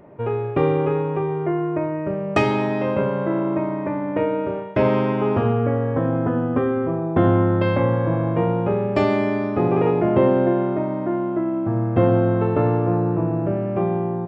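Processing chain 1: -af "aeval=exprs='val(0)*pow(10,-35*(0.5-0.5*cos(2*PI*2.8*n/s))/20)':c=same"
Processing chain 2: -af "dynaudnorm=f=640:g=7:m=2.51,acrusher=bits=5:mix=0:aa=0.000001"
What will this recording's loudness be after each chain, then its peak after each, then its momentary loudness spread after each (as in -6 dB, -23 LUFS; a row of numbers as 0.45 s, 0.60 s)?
-28.0 LUFS, -17.5 LUFS; -8.0 dBFS, -1.5 dBFS; 6 LU, 8 LU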